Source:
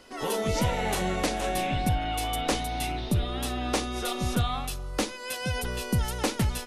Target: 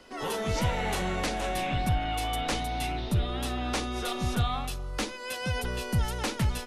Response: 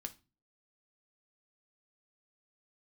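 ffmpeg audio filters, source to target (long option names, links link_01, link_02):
-filter_complex "[0:a]highshelf=frequency=6400:gain=-6.5,acrossover=split=180|880[link_01][link_02][link_03];[link_02]asoftclip=type=hard:threshold=-33dB[link_04];[link_01][link_04][link_03]amix=inputs=3:normalize=0"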